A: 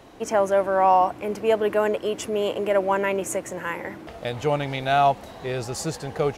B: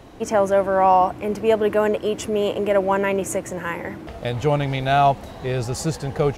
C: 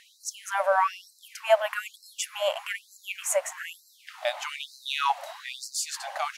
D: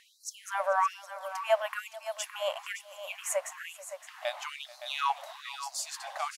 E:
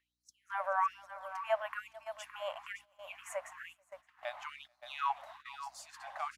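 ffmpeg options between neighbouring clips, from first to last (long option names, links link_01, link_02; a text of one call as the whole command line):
ffmpeg -i in.wav -af "lowshelf=frequency=190:gain=9,volume=1.5dB" out.wav
ffmpeg -i in.wav -af "afftfilt=real='re*gte(b*sr/1024,530*pow(4000/530,0.5+0.5*sin(2*PI*1.1*pts/sr)))':imag='im*gte(b*sr/1024,530*pow(4000/530,0.5+0.5*sin(2*PI*1.1*pts/sr)))':win_size=1024:overlap=0.75,volume=1.5dB" out.wav
ffmpeg -i in.wav -filter_complex "[0:a]equalizer=frequency=1100:width_type=o:width=0.26:gain=4.5,asplit=2[link_01][link_02];[link_02]aecho=0:1:437|566:0.1|0.266[link_03];[link_01][link_03]amix=inputs=2:normalize=0,volume=-5.5dB" out.wav
ffmpeg -i in.wav -filter_complex "[0:a]aeval=exprs='val(0)+0.00224*(sin(2*PI*60*n/s)+sin(2*PI*2*60*n/s)/2+sin(2*PI*3*60*n/s)/3+sin(2*PI*4*60*n/s)/4+sin(2*PI*5*60*n/s)/5)':channel_layout=same,acrossover=split=580 2400:gain=0.0794 1 0.224[link_01][link_02][link_03];[link_01][link_02][link_03]amix=inputs=3:normalize=0,agate=range=-15dB:threshold=-49dB:ratio=16:detection=peak,volume=-3dB" out.wav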